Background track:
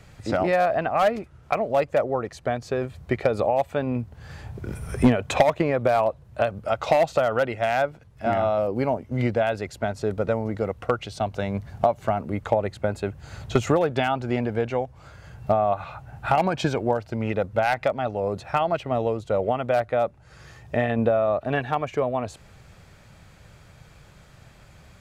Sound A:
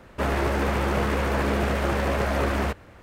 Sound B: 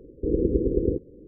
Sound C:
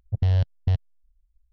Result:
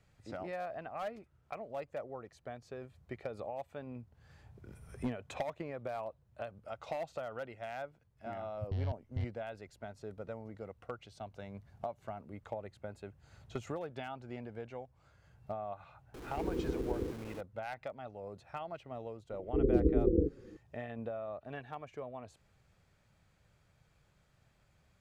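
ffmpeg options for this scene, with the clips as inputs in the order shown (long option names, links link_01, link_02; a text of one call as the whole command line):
ffmpeg -i bed.wav -i cue0.wav -i cue1.wav -i cue2.wav -filter_complex "[2:a]asplit=2[link_01][link_02];[0:a]volume=-19.5dB[link_03];[link_01]aeval=exprs='val(0)+0.5*0.0355*sgn(val(0))':channel_layout=same[link_04];[link_02]asplit=2[link_05][link_06];[link_06]adelay=5.1,afreqshift=-2.8[link_07];[link_05][link_07]amix=inputs=2:normalize=1[link_08];[3:a]atrim=end=1.52,asetpts=PTS-STARTPTS,volume=-15.5dB,afade=type=in:duration=0.004:curve=hsin,afade=type=out:start_time=1.516:duration=0.004:curve=hsin,adelay=8490[link_09];[link_04]atrim=end=1.27,asetpts=PTS-STARTPTS,volume=-14.5dB,afade=type=in:duration=0.004:curve=hsin,afade=type=out:start_time=1.266:duration=0.004:curve=hsin,adelay=16140[link_10];[link_08]atrim=end=1.27,asetpts=PTS-STARTPTS,volume=-2dB,afade=type=in:duration=0.004:curve=hsin,afade=type=out:start_time=1.266:duration=0.004:curve=hsin,adelay=19300[link_11];[link_03][link_09][link_10][link_11]amix=inputs=4:normalize=0" out.wav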